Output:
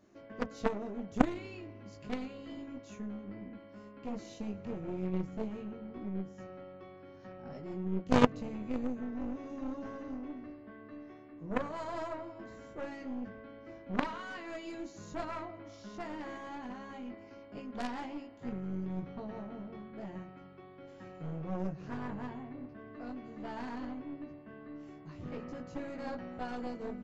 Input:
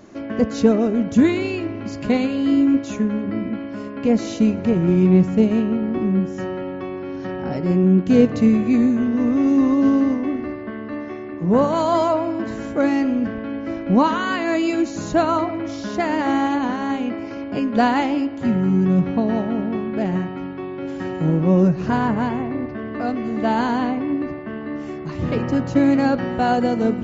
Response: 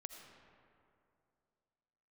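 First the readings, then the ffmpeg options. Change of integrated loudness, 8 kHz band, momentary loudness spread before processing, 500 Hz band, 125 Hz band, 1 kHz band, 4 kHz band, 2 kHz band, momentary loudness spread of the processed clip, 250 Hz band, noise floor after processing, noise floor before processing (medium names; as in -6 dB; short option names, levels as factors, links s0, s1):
-19.5 dB, no reading, 12 LU, -18.5 dB, -20.0 dB, -17.5 dB, -16.0 dB, -16.5 dB, 13 LU, -21.0 dB, -53 dBFS, -31 dBFS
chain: -filter_complex "[0:a]asplit=2[s0][s1];[s1]adelay=20,volume=0.708[s2];[s0][s2]amix=inputs=2:normalize=0,aeval=exprs='0.944*(cos(1*acos(clip(val(0)/0.944,-1,1)))-cos(1*PI/2))+0.211*(cos(2*acos(clip(val(0)/0.944,-1,1)))-cos(2*PI/2))+0.473*(cos(3*acos(clip(val(0)/0.944,-1,1)))-cos(3*PI/2))+0.0335*(cos(4*acos(clip(val(0)/0.944,-1,1)))-cos(4*PI/2))+0.119*(cos(5*acos(clip(val(0)/0.944,-1,1)))-cos(5*PI/2))':c=same,volume=0.708"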